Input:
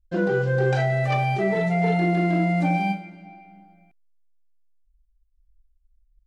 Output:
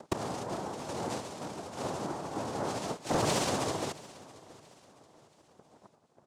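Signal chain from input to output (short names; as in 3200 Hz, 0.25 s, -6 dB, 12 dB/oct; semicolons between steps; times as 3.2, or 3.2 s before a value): treble ducked by the level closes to 1300 Hz, closed at -17 dBFS; in parallel at -2 dB: upward compressor, threshold -26 dBFS; on the sum: phaser 1.9 Hz, delay 4.9 ms, feedback 30%; flipped gate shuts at -20 dBFS, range -27 dB; random-step tremolo 3.4 Hz; noise vocoder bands 2; hard clip -31 dBFS, distortion -18 dB; on a send: feedback echo 0.677 s, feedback 39%, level -20 dB; on the sum: gain +9 dB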